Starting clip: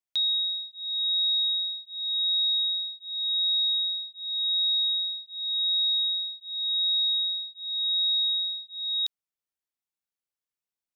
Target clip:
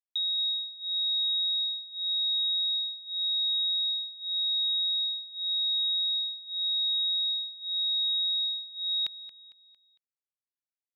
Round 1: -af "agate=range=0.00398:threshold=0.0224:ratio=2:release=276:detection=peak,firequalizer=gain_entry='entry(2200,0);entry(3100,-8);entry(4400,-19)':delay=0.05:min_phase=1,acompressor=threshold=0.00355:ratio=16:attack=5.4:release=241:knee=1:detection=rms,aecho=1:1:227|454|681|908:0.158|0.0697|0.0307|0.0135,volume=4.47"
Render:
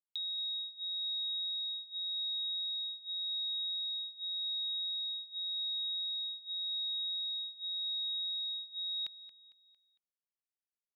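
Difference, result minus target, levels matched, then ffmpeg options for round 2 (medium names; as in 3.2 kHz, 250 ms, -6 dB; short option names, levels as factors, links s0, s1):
compression: peak gain reduction +9 dB
-af "agate=range=0.00398:threshold=0.0224:ratio=2:release=276:detection=peak,firequalizer=gain_entry='entry(2200,0);entry(3100,-8);entry(4400,-19)':delay=0.05:min_phase=1,acompressor=threshold=0.0106:ratio=16:attack=5.4:release=241:knee=1:detection=rms,aecho=1:1:227|454|681|908:0.158|0.0697|0.0307|0.0135,volume=4.47"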